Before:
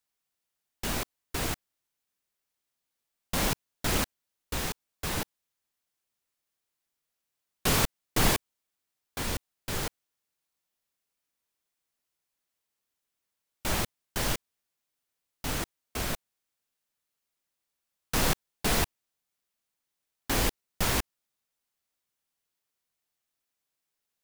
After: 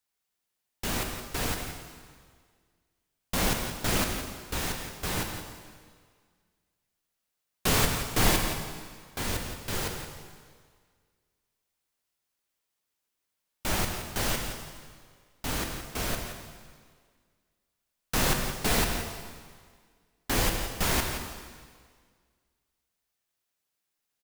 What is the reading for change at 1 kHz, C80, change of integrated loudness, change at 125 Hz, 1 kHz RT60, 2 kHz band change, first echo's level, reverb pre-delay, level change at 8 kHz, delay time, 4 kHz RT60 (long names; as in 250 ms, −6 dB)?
+2.0 dB, 5.0 dB, +1.0 dB, +2.0 dB, 1.8 s, +2.0 dB, −9.5 dB, 5 ms, +1.5 dB, 170 ms, 1.7 s